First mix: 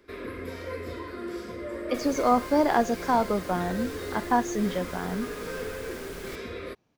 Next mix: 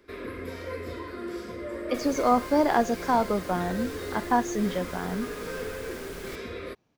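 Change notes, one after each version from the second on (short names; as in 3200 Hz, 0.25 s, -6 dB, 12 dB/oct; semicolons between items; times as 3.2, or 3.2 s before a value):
none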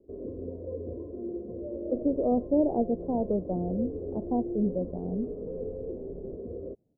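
master: add steep low-pass 610 Hz 36 dB/oct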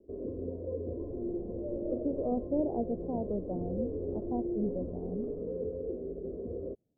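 speech -6.5 dB; second sound: entry -0.95 s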